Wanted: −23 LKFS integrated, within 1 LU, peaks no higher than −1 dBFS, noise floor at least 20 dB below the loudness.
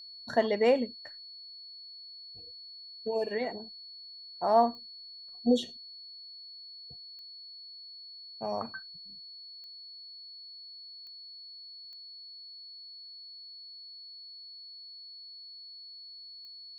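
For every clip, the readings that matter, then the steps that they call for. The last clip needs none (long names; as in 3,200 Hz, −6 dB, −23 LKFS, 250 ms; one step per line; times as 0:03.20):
number of clicks 6; interfering tone 4,400 Hz; level of the tone −45 dBFS; integrated loudness −36.0 LKFS; sample peak −12.0 dBFS; target loudness −23.0 LKFS
→ click removal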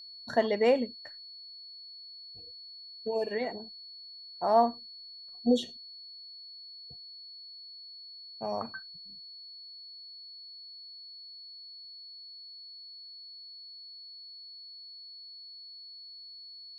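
number of clicks 0; interfering tone 4,400 Hz; level of the tone −45 dBFS
→ notch filter 4,400 Hz, Q 30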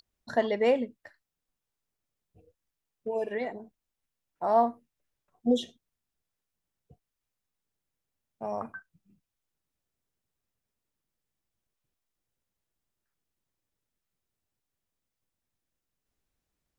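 interfering tone none found; integrated loudness −30.0 LKFS; sample peak −12.0 dBFS; target loudness −23.0 LKFS
→ level +7 dB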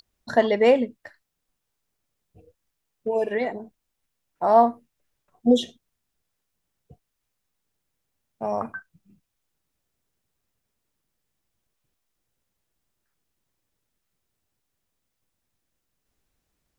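integrated loudness −23.0 LKFS; sample peak −5.0 dBFS; background noise floor −80 dBFS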